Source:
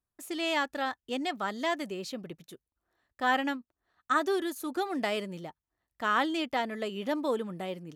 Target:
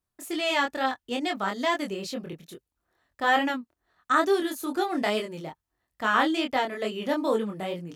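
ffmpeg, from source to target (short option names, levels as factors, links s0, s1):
-af "flanger=delay=22.5:depth=3.2:speed=2.3,volume=2.37"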